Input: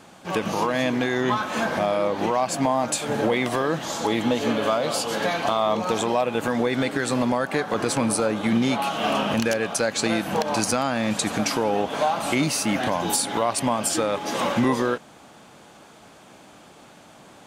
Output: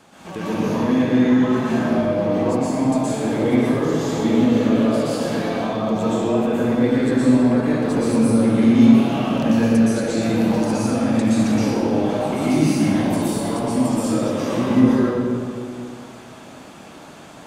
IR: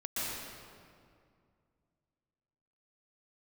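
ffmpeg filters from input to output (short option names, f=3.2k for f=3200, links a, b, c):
-filter_complex "[0:a]acrossover=split=450[a][b];[b]acompressor=threshold=-36dB:ratio=4[c];[a][c]amix=inputs=2:normalize=0,asettb=1/sr,asplit=3[d][e][f];[d]atrim=end=7.644[g];[e]atrim=start=7.64:end=8.22,asetpts=PTS-STARTPTS,afade=t=in:d=0.004:c=qsin,afade=t=out:st=0.576:d=0.004:c=qsin,aeval=exprs='sgn(val(0))*max(abs(val(0))-0.00188,0)':c=same[h];[f]atrim=start=8.216[i];[g][h]acrossfade=d=0.004:c1=hsin:c2=qsin[j];[j][i]acrossfade=d=0.004:c1=qsin:c2=hsin[k];[1:a]atrim=start_sample=2205[l];[k][l]afir=irnorm=-1:irlink=0,volume=2dB"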